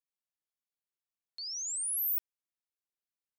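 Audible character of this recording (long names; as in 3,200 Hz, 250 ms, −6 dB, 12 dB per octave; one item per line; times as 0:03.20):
background noise floor −95 dBFS
spectral slope +2.5 dB per octave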